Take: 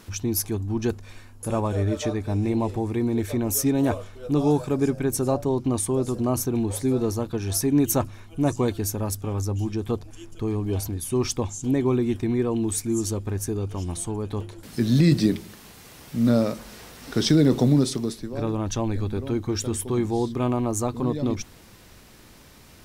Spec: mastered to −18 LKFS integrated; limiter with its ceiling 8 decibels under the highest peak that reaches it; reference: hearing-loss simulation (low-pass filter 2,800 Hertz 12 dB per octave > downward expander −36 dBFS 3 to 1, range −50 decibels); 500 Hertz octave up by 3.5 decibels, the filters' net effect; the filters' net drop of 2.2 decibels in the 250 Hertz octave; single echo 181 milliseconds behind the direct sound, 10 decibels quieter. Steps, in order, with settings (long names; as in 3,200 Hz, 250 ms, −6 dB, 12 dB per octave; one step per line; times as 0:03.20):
parametric band 250 Hz −5 dB
parametric band 500 Hz +6.5 dB
brickwall limiter −15 dBFS
low-pass filter 2,800 Hz 12 dB per octave
single-tap delay 181 ms −10 dB
downward expander −36 dBFS 3 to 1, range −50 dB
level +8.5 dB